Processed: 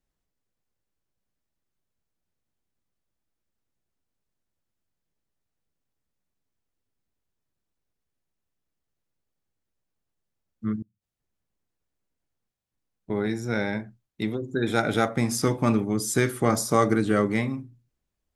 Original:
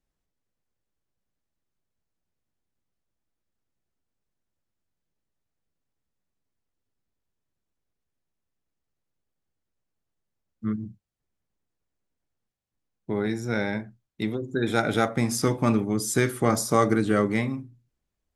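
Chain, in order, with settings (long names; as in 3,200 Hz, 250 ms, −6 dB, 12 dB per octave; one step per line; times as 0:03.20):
0:10.82–0:13.10: gate with flip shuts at −36 dBFS, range −31 dB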